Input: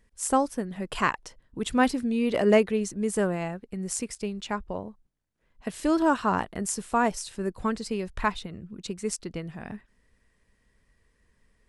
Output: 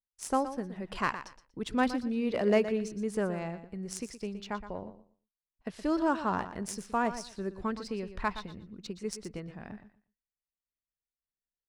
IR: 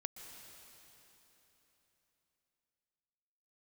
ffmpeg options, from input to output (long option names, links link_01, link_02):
-filter_complex "[0:a]agate=range=-34dB:threshold=-50dB:ratio=16:detection=peak,aexciter=amount=1.8:drive=4.3:freq=4400,adynamicsmooth=sensitivity=2:basefreq=4300,asplit=2[link_01][link_02];[link_02]aecho=0:1:119|238|357:0.251|0.0502|0.01[link_03];[link_01][link_03]amix=inputs=2:normalize=0,volume=-5.5dB"